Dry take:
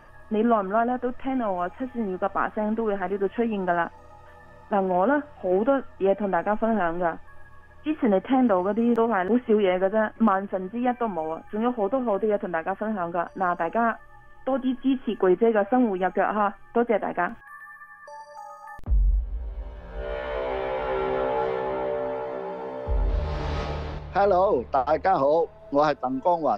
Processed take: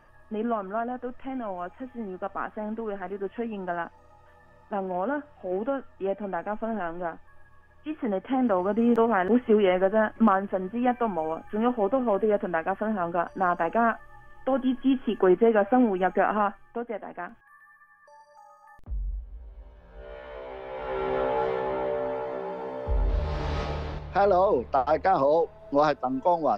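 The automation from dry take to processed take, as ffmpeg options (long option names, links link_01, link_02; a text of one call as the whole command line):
ffmpeg -i in.wav -af "volume=10dB,afade=type=in:start_time=8.2:duration=0.65:silence=0.446684,afade=type=out:start_time=16.32:duration=0.48:silence=0.281838,afade=type=in:start_time=20.65:duration=0.52:silence=0.316228" out.wav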